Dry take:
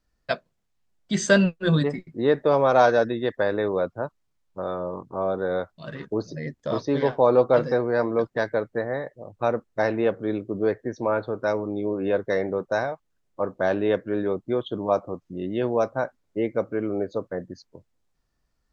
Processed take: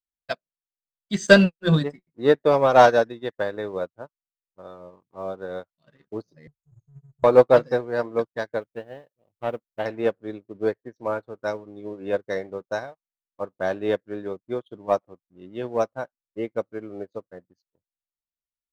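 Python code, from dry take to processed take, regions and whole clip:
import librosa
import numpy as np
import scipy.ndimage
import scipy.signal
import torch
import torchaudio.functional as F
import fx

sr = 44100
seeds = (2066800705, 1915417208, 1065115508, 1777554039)

y = fx.chain(x, sr, fx.brickwall_bandstop(low_hz=170.0, high_hz=6400.0),
    fx.low_shelf(hz=78.0, db=9.0),
    fx.band_squash(depth_pct=40), at=(6.47, 7.24))
y = fx.chain(y, sr, fx.median_filter(points=25),
    fx.lowpass(hz=3300.0, slope=24),
    fx.quant_dither(seeds[0], bits=12, dither='triangular'), at=(8.61, 9.86))
y = fx.high_shelf(y, sr, hz=4900.0, db=6.0)
y = fx.leveller(y, sr, passes=1)
y = fx.upward_expand(y, sr, threshold_db=-34.0, expansion=2.5)
y = y * librosa.db_to_amplitude(4.0)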